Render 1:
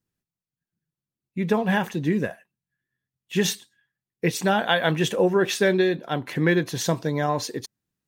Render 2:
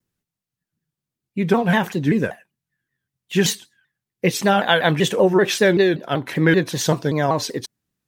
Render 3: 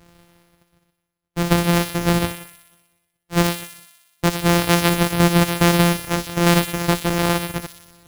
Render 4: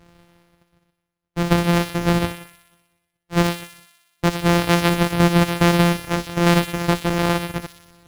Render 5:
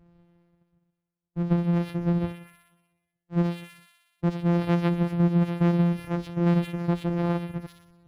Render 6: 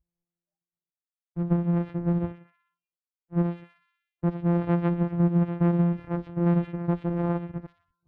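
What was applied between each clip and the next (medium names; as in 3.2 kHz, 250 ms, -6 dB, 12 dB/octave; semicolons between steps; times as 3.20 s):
vibrato with a chosen wave saw down 5.2 Hz, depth 160 cents; trim +4.5 dB
sorted samples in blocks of 256 samples; reverse; upward compressor, threshold -29 dBFS; reverse; feedback echo behind a high-pass 61 ms, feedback 70%, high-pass 3.5 kHz, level -4 dB
treble shelf 6.6 kHz -9 dB
spectral contrast enhancement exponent 1.8; trim -5.5 dB
companding laws mixed up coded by A; spectral noise reduction 25 dB; low-pass 1.7 kHz 12 dB/octave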